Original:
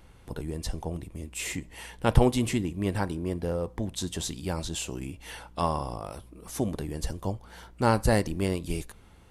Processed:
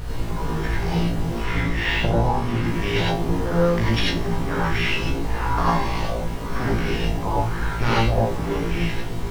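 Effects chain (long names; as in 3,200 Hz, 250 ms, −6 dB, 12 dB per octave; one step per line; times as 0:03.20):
samples sorted by size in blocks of 8 samples
camcorder AGC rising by 8.4 dB per second
guitar amp tone stack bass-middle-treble 5-5-5
in parallel at +2 dB: downward compressor, threshold −34 dBFS, peak gain reduction 9 dB
on the sum: bit reduction 7 bits
auto-filter low-pass saw up 1 Hz 580–3,100 Hz
background noise brown −34 dBFS
on a send: flutter between parallel walls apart 3 metres, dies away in 0.28 s
on the sum: reverb whose tail is shaped and stops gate 120 ms rising, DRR −5 dB
0:01.44–0:02.68: linearly interpolated sample-rate reduction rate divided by 2×
level +3 dB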